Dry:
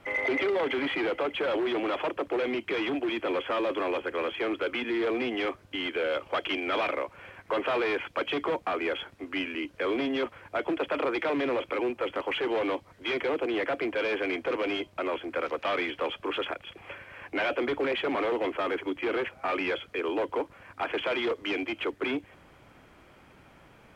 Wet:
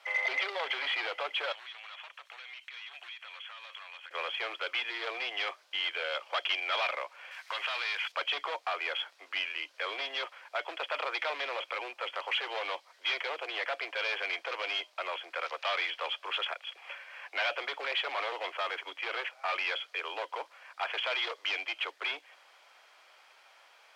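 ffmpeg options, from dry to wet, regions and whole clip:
-filter_complex "[0:a]asettb=1/sr,asplit=3[s0][s1][s2];[s0]atrim=end=1.524[s3];[s1]atrim=start=1.52:end=4.11,asetpts=PTS-STARTPTS,afade=t=in:d=0.004:c=qsin,afade=t=out:st=2.586:d=0.004:c=qsin,highpass=1400,acompressor=threshold=0.00794:ratio=12:attack=3.2:release=140:knee=1:detection=peak,bandreject=f=4900:w=8.6[s4];[s2]atrim=start=4.106[s5];[s3][s4]acrossfade=d=0.004:c1=hsin:c2=qsin[s6];[s6][s5]acrossfade=d=0.004:c1=qsin:c2=hsin,asettb=1/sr,asplit=3[s7][s8][s9];[s7]atrim=end=7.314[s10];[s8]atrim=start=7.31:end=8.12,asetpts=PTS-STARTPTS,afade=t=in:d=0.004:c=qsin,afade=t=out:st=0.806:d=0.004:c=qsin,tiltshelf=f=880:g=-9,acompressor=threshold=0.0355:ratio=10:attack=3.2:release=140:knee=1:detection=peak[s11];[s9]atrim=start=8.116[s12];[s10][s11]acrossfade=d=0.004:c1=hsin:c2=qsin[s13];[s13][s12]acrossfade=d=0.004:c1=qsin:c2=hsin,highpass=f=630:w=0.5412,highpass=f=630:w=1.3066,equalizer=f=4600:t=o:w=1.3:g=10.5,volume=0.708"

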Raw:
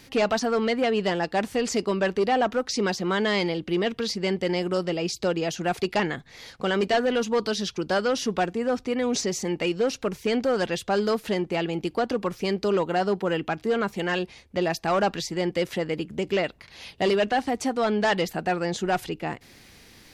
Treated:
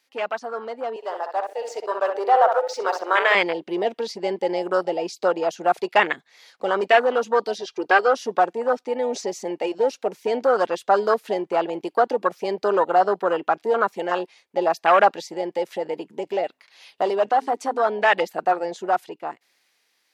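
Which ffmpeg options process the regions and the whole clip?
-filter_complex "[0:a]asettb=1/sr,asplit=3[s0][s1][s2];[s0]atrim=end=0.964[s3];[s1]atrim=start=0.96:end=3.35,asetpts=PTS-STARTPTS,afade=t=in:d=0.004:c=qsin,afade=t=out:st=2.386:d=0.004:c=qsin,highpass=f=420:w=0.5412,highpass=f=420:w=1.3066,aeval=exprs='sgn(val(0))*max(abs(val(0))-0.00335,0)':c=same,asplit=2[s4][s5];[s5]adelay=63,lowpass=f=2200:p=1,volume=0.531,asplit=2[s6][s7];[s7]adelay=63,lowpass=f=2200:p=1,volume=0.43,asplit=2[s8][s9];[s9]adelay=63,lowpass=f=2200:p=1,volume=0.43,asplit=2[s10][s11];[s11]adelay=63,lowpass=f=2200:p=1,volume=0.43,asplit=2[s12][s13];[s13]adelay=63,lowpass=f=2200:p=1,volume=0.43[s14];[s4][s6][s8][s10][s12][s14]amix=inputs=6:normalize=0,atrim=end_sample=105399[s15];[s2]atrim=start=3.346[s16];[s3][s15]acrossfade=d=0.004:c1=hsin:c2=qsin[s17];[s17][s16]acrossfade=d=0.004:c1=qsin:c2=hsin,asettb=1/sr,asplit=3[s18][s19][s20];[s18]atrim=end=7.584[s21];[s19]atrim=start=7.58:end=8.14,asetpts=PTS-STARTPTS,afade=t=in:d=0.004:c=qsin,afade=t=out:st=0.556:d=0.004:c=qsin,aecho=1:1:2.5:0.62,atrim=end_sample=24696,acrossover=split=7200[s22][s23];[s23]acompressor=threshold=0.00112:ratio=4:attack=1:release=60[s24];[s22][s24]amix=inputs=2:normalize=0[s25];[s20]atrim=start=8.136[s26];[s21][s25]acrossfade=d=0.004:c1=hsin:c2=qsin[s27];[s27][s26]acrossfade=d=0.004:c1=qsin:c2=hsin,asettb=1/sr,asplit=3[s28][s29][s30];[s28]atrim=end=15.214[s31];[s29]atrim=start=15.21:end=18.2,asetpts=PTS-STARTPTS,afade=t=in:d=0.004:c=qsin,afade=t=out:st=2.986:d=0.004:c=qsin,bandreject=f=129.5:t=h:w=4,bandreject=f=259:t=h:w=4,acompressor=threshold=0.0447:ratio=1.5:attack=3.2:release=140:knee=1:detection=peak[s32];[s30]atrim=start=18.196[s33];[s31][s32]acrossfade=d=0.004:c1=hsin:c2=qsin[s34];[s34][s33]acrossfade=d=0.004:c1=qsin:c2=hsin,afwtdn=0.0447,highpass=670,dynaudnorm=f=330:g=11:m=3.76"

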